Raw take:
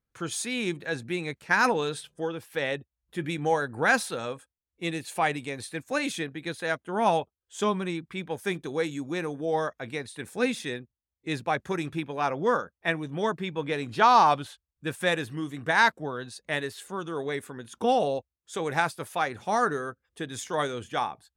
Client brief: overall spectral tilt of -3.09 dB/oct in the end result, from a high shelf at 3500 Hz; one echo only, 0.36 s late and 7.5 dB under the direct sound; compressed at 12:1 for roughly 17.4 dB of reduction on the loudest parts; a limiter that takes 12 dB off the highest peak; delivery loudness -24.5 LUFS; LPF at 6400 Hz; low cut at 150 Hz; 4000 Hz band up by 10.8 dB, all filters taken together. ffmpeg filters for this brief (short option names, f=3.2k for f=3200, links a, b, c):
-af "highpass=150,lowpass=6.4k,highshelf=f=3.5k:g=7.5,equalizer=f=4k:t=o:g=8.5,acompressor=threshold=-30dB:ratio=12,alimiter=level_in=3dB:limit=-24dB:level=0:latency=1,volume=-3dB,aecho=1:1:360:0.422,volume=13dB"